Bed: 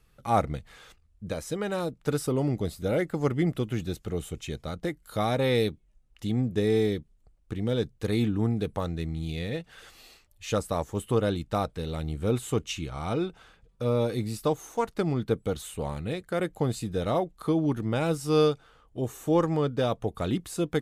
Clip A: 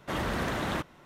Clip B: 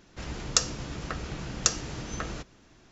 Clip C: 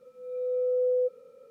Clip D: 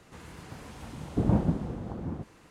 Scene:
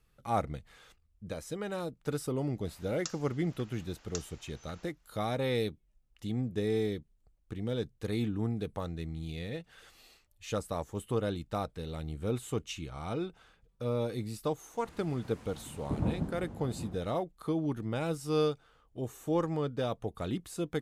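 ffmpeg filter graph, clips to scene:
ffmpeg -i bed.wav -i cue0.wav -i cue1.wav -i cue2.wav -i cue3.wav -filter_complex "[0:a]volume=-6.5dB[link_01];[2:a]highpass=670,atrim=end=2.91,asetpts=PTS-STARTPTS,volume=-17dB,afade=type=in:duration=0.004:curve=hsin,afade=type=out:start_time=2.906:duration=0.004:curve=hsin,adelay=2490[link_02];[4:a]atrim=end=2.5,asetpts=PTS-STARTPTS,volume=-7.5dB,afade=type=in:duration=0.004:curve=hsin,afade=type=out:start_time=2.496:duration=0.004:curve=hsin,adelay=14730[link_03];[link_01][link_02][link_03]amix=inputs=3:normalize=0" out.wav

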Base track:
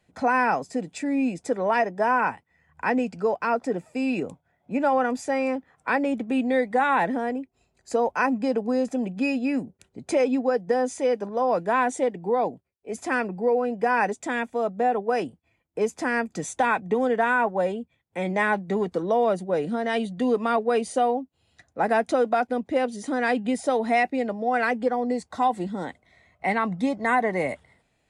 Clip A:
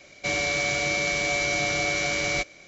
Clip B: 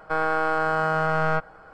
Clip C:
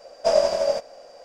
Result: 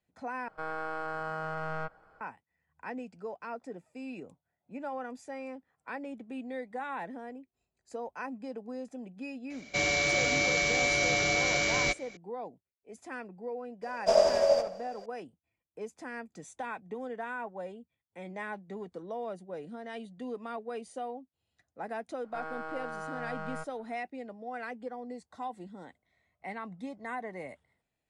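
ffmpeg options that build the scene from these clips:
ffmpeg -i bed.wav -i cue0.wav -i cue1.wav -i cue2.wav -filter_complex "[2:a]asplit=2[link_01][link_02];[0:a]volume=-16dB[link_03];[3:a]asplit=2[link_04][link_05];[link_05]adelay=71,lowpass=frequency=2000:poles=1,volume=-5dB,asplit=2[link_06][link_07];[link_07]adelay=71,lowpass=frequency=2000:poles=1,volume=0.45,asplit=2[link_08][link_09];[link_09]adelay=71,lowpass=frequency=2000:poles=1,volume=0.45,asplit=2[link_10][link_11];[link_11]adelay=71,lowpass=frequency=2000:poles=1,volume=0.45,asplit=2[link_12][link_13];[link_13]adelay=71,lowpass=frequency=2000:poles=1,volume=0.45,asplit=2[link_14][link_15];[link_15]adelay=71,lowpass=frequency=2000:poles=1,volume=0.45[link_16];[link_04][link_06][link_08][link_10][link_12][link_14][link_16]amix=inputs=7:normalize=0[link_17];[link_03]asplit=2[link_18][link_19];[link_18]atrim=end=0.484[link_20];[link_01]atrim=end=1.73,asetpts=PTS-STARTPTS,volume=-13dB[link_21];[link_19]atrim=start=2.206[link_22];[1:a]atrim=end=2.67,asetpts=PTS-STARTPTS,volume=-2dB,afade=type=in:duration=0.004:curve=hsin,afade=type=out:start_time=2.666:duration=0.004:curve=hsin,adelay=9500[link_23];[link_17]atrim=end=1.24,asetpts=PTS-STARTPTS,volume=-4.5dB,afade=type=in:duration=0.004:curve=hsin,afade=type=out:start_time=1.236:duration=0.004:curve=hsin,adelay=13820[link_24];[link_02]atrim=end=1.73,asetpts=PTS-STARTPTS,volume=-16.5dB,afade=type=in:duration=0.004:curve=hsin,afade=type=out:start_time=1.726:duration=0.004:curve=hsin,adelay=22240[link_25];[link_20][link_21]acrossfade=duration=0.004:curve1=hsin:curve2=hsin[link_26];[link_26][link_22]acrossfade=duration=0.004:curve1=hsin:curve2=hsin[link_27];[link_27][link_23][link_24][link_25]amix=inputs=4:normalize=0" out.wav

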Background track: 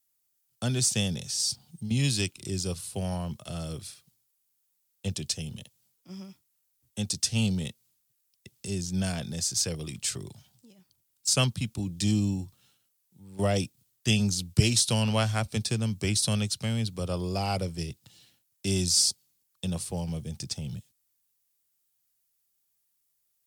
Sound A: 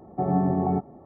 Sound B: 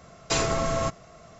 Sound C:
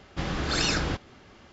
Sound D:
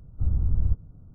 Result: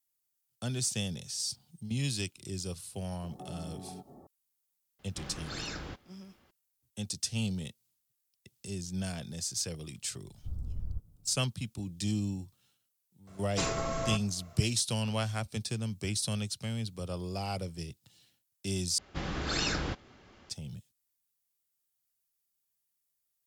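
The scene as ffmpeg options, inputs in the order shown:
ffmpeg -i bed.wav -i cue0.wav -i cue1.wav -i cue2.wav -i cue3.wav -filter_complex "[3:a]asplit=2[link_01][link_02];[0:a]volume=-6.5dB[link_03];[1:a]acompressor=threshold=-37dB:ratio=6:attack=3.2:release=140:knee=1:detection=peak[link_04];[link_03]asplit=2[link_05][link_06];[link_05]atrim=end=18.984[link_07];[link_02]atrim=end=1.52,asetpts=PTS-STARTPTS,volume=-5.5dB[link_08];[link_06]atrim=start=20.496[link_09];[link_04]atrim=end=1.05,asetpts=PTS-STARTPTS,volume=-6dB,afade=type=in:duration=0.004:curve=hsin,afade=type=out:start_time=1.046:duration=0.004:curve=hsin,adelay=3220[link_10];[link_01]atrim=end=1.52,asetpts=PTS-STARTPTS,volume=-13.5dB,afade=type=in:duration=0.004:curve=hsin,afade=type=out:start_time=1.516:duration=0.004:curve=hsin,adelay=4990[link_11];[4:a]atrim=end=1.14,asetpts=PTS-STARTPTS,volume=-14dB,afade=type=in:duration=0.004:curve=hsin,afade=type=out:start_time=1.136:duration=0.004:curve=hsin,adelay=10250[link_12];[2:a]atrim=end=1.39,asetpts=PTS-STARTPTS,volume=-7.5dB,afade=type=in:duration=0.004:curve=hsin,afade=type=out:start_time=1.386:duration=0.004:curve=hsin,adelay=13270[link_13];[link_07][link_08]acrossfade=duration=0.004:curve1=hsin:curve2=hsin[link_14];[link_14][link_09]acrossfade=duration=0.004:curve1=hsin:curve2=hsin[link_15];[link_15][link_10][link_11][link_12][link_13]amix=inputs=5:normalize=0" out.wav

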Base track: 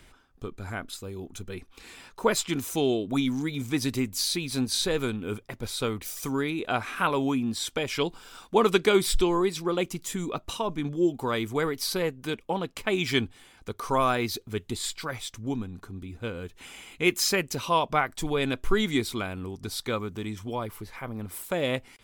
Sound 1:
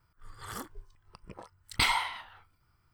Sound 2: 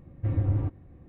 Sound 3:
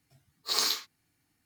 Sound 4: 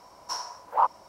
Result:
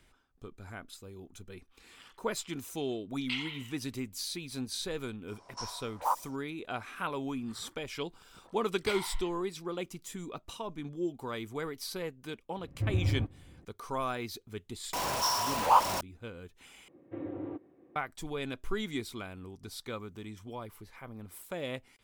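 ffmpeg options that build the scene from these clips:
ffmpeg -i bed.wav -i cue0.wav -i cue1.wav -i cue2.wav -i cue3.wav -filter_complex "[1:a]asplit=2[link_01][link_02];[4:a]asplit=2[link_03][link_04];[2:a]asplit=2[link_05][link_06];[0:a]volume=-10dB[link_07];[link_01]bandpass=frequency=2800:width_type=q:width=5:csg=0[link_08];[link_03]aresample=22050,aresample=44100[link_09];[link_04]aeval=exprs='val(0)+0.5*0.0501*sgn(val(0))':channel_layout=same[link_10];[link_06]highpass=frequency=350:width_type=q:width=2.5[link_11];[link_07]asplit=2[link_12][link_13];[link_12]atrim=end=16.884[link_14];[link_11]atrim=end=1.08,asetpts=PTS-STARTPTS,volume=-6dB[link_15];[link_13]atrim=start=17.956[link_16];[link_08]atrim=end=2.93,asetpts=PTS-STARTPTS,volume=-1dB,afade=type=in:duration=0.004:curve=hsin,afade=type=out:start_time=2.926:duration=0.004:curve=hsin,adelay=1500[link_17];[link_09]atrim=end=1.08,asetpts=PTS-STARTPTS,volume=-7.5dB,afade=type=in:duration=0.004:curve=hsin,afade=type=out:start_time=1.076:duration=0.004:curve=hsin,adelay=5280[link_18];[link_02]atrim=end=2.93,asetpts=PTS-STARTPTS,volume=-13dB,afade=type=in:duration=0.004:curve=hsin,afade=type=out:start_time=2.926:duration=0.004:curve=hsin,adelay=7070[link_19];[link_05]atrim=end=1.08,asetpts=PTS-STARTPTS,volume=-4dB,afade=type=in:duration=0.004:curve=hsin,afade=type=out:start_time=1.076:duration=0.004:curve=hsin,adelay=12570[link_20];[link_10]atrim=end=1.08,asetpts=PTS-STARTPTS,volume=-1.5dB,afade=type=in:duration=0.004:curve=hsin,afade=type=out:start_time=1.076:duration=0.004:curve=hsin,adelay=14930[link_21];[link_14][link_15]acrossfade=duration=0.004:curve1=hsin:curve2=hsin[link_22];[link_22][link_16]acrossfade=duration=0.004:curve1=hsin:curve2=hsin[link_23];[link_23][link_17][link_18][link_19][link_20][link_21]amix=inputs=6:normalize=0" out.wav

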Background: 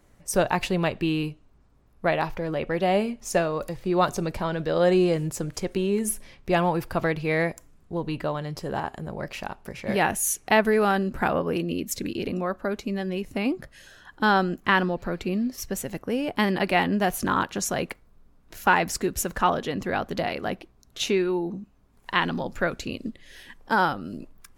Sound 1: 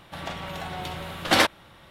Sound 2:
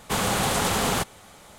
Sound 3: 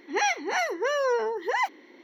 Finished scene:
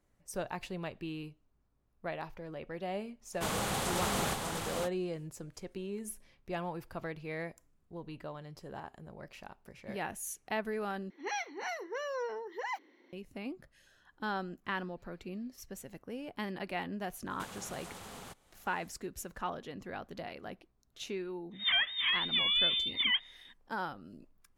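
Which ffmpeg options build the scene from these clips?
ffmpeg -i bed.wav -i cue0.wav -i cue1.wav -i cue2.wav -filter_complex "[2:a]asplit=2[link_01][link_02];[3:a]asplit=2[link_03][link_04];[0:a]volume=-15.5dB[link_05];[link_01]aecho=1:1:596:0.596[link_06];[link_02]acompressor=threshold=-28dB:ratio=6:attack=14:release=998:knee=1:detection=peak[link_07];[link_04]lowpass=frequency=3400:width_type=q:width=0.5098,lowpass=frequency=3400:width_type=q:width=0.6013,lowpass=frequency=3400:width_type=q:width=0.9,lowpass=frequency=3400:width_type=q:width=2.563,afreqshift=-4000[link_08];[link_05]asplit=2[link_09][link_10];[link_09]atrim=end=11.104[link_11];[link_03]atrim=end=2.03,asetpts=PTS-STARTPTS,volume=-12dB[link_12];[link_10]atrim=start=13.126[link_13];[link_06]atrim=end=1.58,asetpts=PTS-STARTPTS,volume=-10dB,afade=type=in:duration=0.05,afade=type=out:start_time=1.53:duration=0.05,adelay=3310[link_14];[link_07]atrim=end=1.58,asetpts=PTS-STARTPTS,volume=-15.5dB,afade=type=in:duration=0.004:curve=hsin,afade=type=out:start_time=1.576:duration=0.004:curve=hsin,adelay=17300[link_15];[link_08]atrim=end=2.03,asetpts=PTS-STARTPTS,volume=-4dB,afade=type=in:duration=0.05,afade=type=out:start_time=1.98:duration=0.05,adelay=21510[link_16];[link_11][link_12]acrossfade=duration=0.004:curve1=hsin:curve2=hsin[link_17];[link_17][link_13]acrossfade=duration=0.004:curve1=hsin:curve2=hsin[link_18];[link_18][link_14][link_15][link_16]amix=inputs=4:normalize=0" out.wav

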